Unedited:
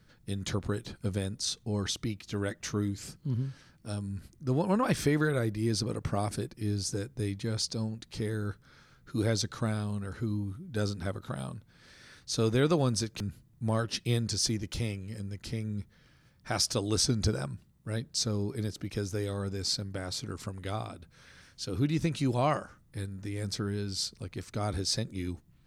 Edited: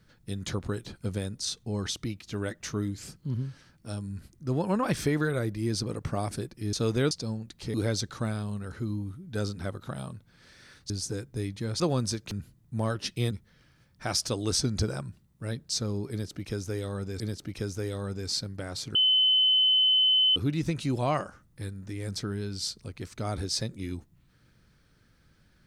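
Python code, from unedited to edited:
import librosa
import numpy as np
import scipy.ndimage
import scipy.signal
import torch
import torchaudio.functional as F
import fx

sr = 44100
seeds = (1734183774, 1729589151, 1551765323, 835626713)

y = fx.edit(x, sr, fx.swap(start_s=6.73, length_s=0.9, other_s=12.31, other_length_s=0.38),
    fx.cut(start_s=8.26, length_s=0.89),
    fx.cut(start_s=14.2, length_s=1.56),
    fx.repeat(start_s=18.56, length_s=1.09, count=2),
    fx.bleep(start_s=20.31, length_s=1.41, hz=3040.0, db=-19.0), tone=tone)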